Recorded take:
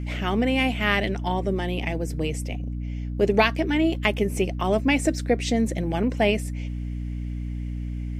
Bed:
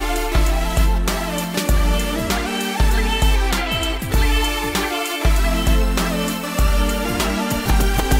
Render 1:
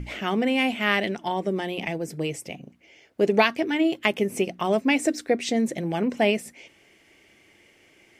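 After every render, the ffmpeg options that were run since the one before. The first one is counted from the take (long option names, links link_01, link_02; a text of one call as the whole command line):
ffmpeg -i in.wav -af "bandreject=frequency=60:width_type=h:width=6,bandreject=frequency=120:width_type=h:width=6,bandreject=frequency=180:width_type=h:width=6,bandreject=frequency=240:width_type=h:width=6,bandreject=frequency=300:width_type=h:width=6" out.wav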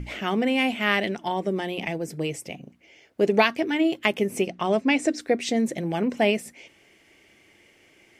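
ffmpeg -i in.wav -filter_complex "[0:a]asettb=1/sr,asplit=3[link_01][link_02][link_03];[link_01]atrim=end=4.474[link_04];[link_02]atrim=start=4.47:end=5.2,asetpts=PTS-STARTPTS,afade=type=in:duration=0.004:curve=qsin,afade=type=out:start_time=0.726:duration=0.004:curve=qsin,lowpass=7800[link_05];[link_03]atrim=start=5.196[link_06];[link_04][link_05]acrossfade=duration=0.004:curve1=hsin:curve2=qsin[link_07];[link_07][link_06]acrossfade=duration=0.004:curve1=qsin:curve2=hsin" out.wav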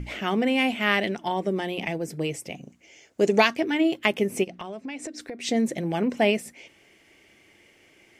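ffmpeg -i in.wav -filter_complex "[0:a]asettb=1/sr,asplit=3[link_01][link_02][link_03];[link_01]atrim=end=2.554[link_04];[link_02]atrim=start=2.55:end=3.54,asetpts=PTS-STARTPTS,afade=type=in:duration=0.004:curve=qsin,afade=type=out:start_time=0.986:duration=0.004:curve=qsin,equalizer=frequency=6900:width=1.8:gain=12.5[link_05];[link_03]atrim=start=3.536[link_06];[link_04][link_05]acrossfade=duration=0.004:curve1=hsin:curve2=qsin[link_07];[link_07][link_06]acrossfade=duration=0.004:curve1=qsin:curve2=hsin,asplit=3[link_08][link_09][link_10];[link_08]afade=type=out:start_time=4.43:duration=0.02[link_11];[link_09]acompressor=threshold=-32dB:ratio=8:attack=3.2:release=140:knee=1:detection=peak,afade=type=in:start_time=4.43:duration=0.02,afade=type=out:start_time=5.43:duration=0.02[link_12];[link_10]afade=type=in:start_time=5.43:duration=0.02[link_13];[link_11][link_12][link_13]amix=inputs=3:normalize=0" out.wav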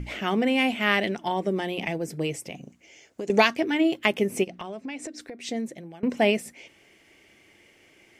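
ffmpeg -i in.wav -filter_complex "[0:a]asettb=1/sr,asplit=3[link_01][link_02][link_03];[link_01]atrim=end=2.374[link_04];[link_02]atrim=start=2.37:end=3.3,asetpts=PTS-STARTPTS,afade=type=in:duration=0.004:curve=qsin,afade=type=out:start_time=0.926:duration=0.004:curve=qsin,acompressor=threshold=-30dB:ratio=6:attack=3.2:release=140:knee=1:detection=peak[link_05];[link_03]atrim=start=3.296[link_06];[link_04][link_05]acrossfade=duration=0.004:curve1=hsin:curve2=qsin[link_07];[link_07][link_06]acrossfade=duration=0.004:curve1=qsin:curve2=hsin,asplit=2[link_08][link_09];[link_08]atrim=end=6.03,asetpts=PTS-STARTPTS,afade=type=out:start_time=4.94:duration=1.09:silence=0.0668344[link_10];[link_09]atrim=start=6.03,asetpts=PTS-STARTPTS,afade=type=in:duration=0.004:curve=hsin:silence=0.0668344[link_11];[link_10][link_11]concat=n=2:v=0:a=1" out.wav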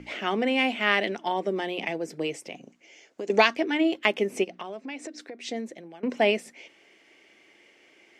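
ffmpeg -i in.wav -filter_complex "[0:a]acrossover=split=220 7200:gain=0.112 1 0.224[link_01][link_02][link_03];[link_01][link_02][link_03]amix=inputs=3:normalize=0" out.wav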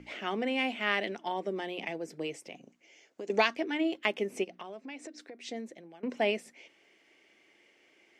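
ffmpeg -i in.wav -af "volume=-6.5dB" out.wav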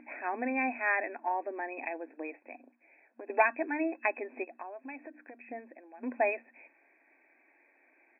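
ffmpeg -i in.wav -af "afftfilt=real='re*between(b*sr/4096,230,2600)':imag='im*between(b*sr/4096,230,2600)':win_size=4096:overlap=0.75,aecho=1:1:1.2:0.58" out.wav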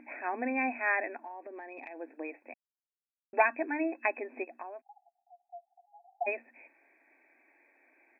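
ffmpeg -i in.wav -filter_complex "[0:a]asplit=3[link_01][link_02][link_03];[link_01]afade=type=out:start_time=1.17:duration=0.02[link_04];[link_02]acompressor=threshold=-41dB:ratio=6:attack=3.2:release=140:knee=1:detection=peak,afade=type=in:start_time=1.17:duration=0.02,afade=type=out:start_time=1.96:duration=0.02[link_05];[link_03]afade=type=in:start_time=1.96:duration=0.02[link_06];[link_04][link_05][link_06]amix=inputs=3:normalize=0,asplit=3[link_07][link_08][link_09];[link_07]afade=type=out:start_time=4.8:duration=0.02[link_10];[link_08]asuperpass=centerf=760:order=12:qfactor=5.4,afade=type=in:start_time=4.8:duration=0.02,afade=type=out:start_time=6.26:duration=0.02[link_11];[link_09]afade=type=in:start_time=6.26:duration=0.02[link_12];[link_10][link_11][link_12]amix=inputs=3:normalize=0,asplit=3[link_13][link_14][link_15];[link_13]atrim=end=2.54,asetpts=PTS-STARTPTS,afade=type=out:start_time=2.536:duration=0.004:curve=hsin[link_16];[link_14]atrim=start=2.54:end=3.33,asetpts=PTS-STARTPTS,volume=0[link_17];[link_15]atrim=start=3.33,asetpts=PTS-STARTPTS,afade=type=in:duration=0.004:curve=hsin[link_18];[link_16][link_17][link_18]concat=n=3:v=0:a=1" out.wav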